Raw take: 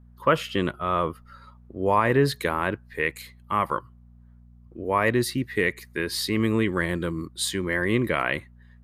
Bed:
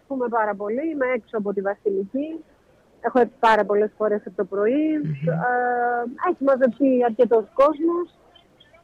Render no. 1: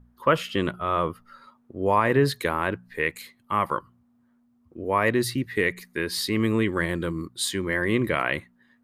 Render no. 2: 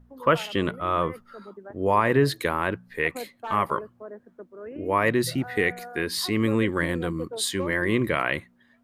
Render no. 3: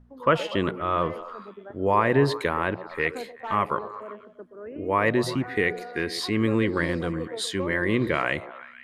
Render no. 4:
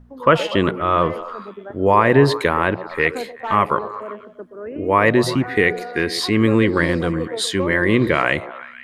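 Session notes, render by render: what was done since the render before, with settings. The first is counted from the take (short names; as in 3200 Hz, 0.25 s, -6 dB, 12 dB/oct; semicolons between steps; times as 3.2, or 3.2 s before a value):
de-hum 60 Hz, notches 3
add bed -19 dB
air absorption 51 m; delay with a stepping band-pass 0.122 s, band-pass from 460 Hz, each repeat 0.7 oct, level -10 dB
gain +7.5 dB; limiter -2 dBFS, peak gain reduction 1.5 dB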